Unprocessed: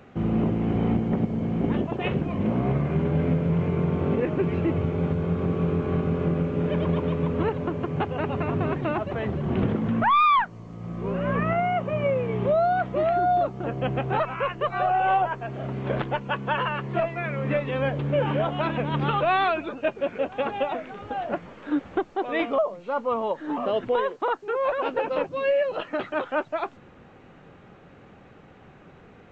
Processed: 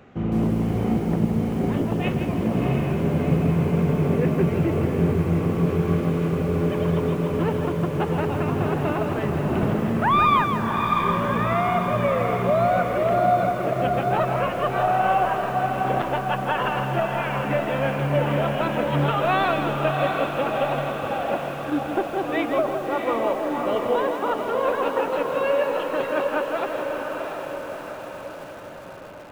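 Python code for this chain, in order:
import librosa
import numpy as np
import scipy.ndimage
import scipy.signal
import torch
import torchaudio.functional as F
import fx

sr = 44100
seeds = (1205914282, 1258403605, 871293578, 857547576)

y = fx.tilt_eq(x, sr, slope=2.0, at=(5.66, 6.33))
y = fx.echo_diffused(y, sr, ms=692, feedback_pct=61, wet_db=-4)
y = fx.echo_crushed(y, sr, ms=162, feedback_pct=35, bits=7, wet_db=-7.0)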